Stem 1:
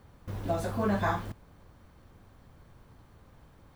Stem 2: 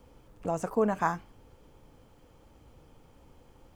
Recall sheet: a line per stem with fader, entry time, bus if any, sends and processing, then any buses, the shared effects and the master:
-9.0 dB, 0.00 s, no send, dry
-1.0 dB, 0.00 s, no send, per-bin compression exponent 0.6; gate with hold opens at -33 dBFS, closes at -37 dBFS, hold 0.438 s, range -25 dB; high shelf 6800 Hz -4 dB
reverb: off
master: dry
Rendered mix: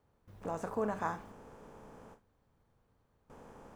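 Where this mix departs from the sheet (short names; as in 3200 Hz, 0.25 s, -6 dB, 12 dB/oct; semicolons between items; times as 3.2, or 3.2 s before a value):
stem 1 -9.0 dB -> -18.5 dB; stem 2 -1.0 dB -> -9.5 dB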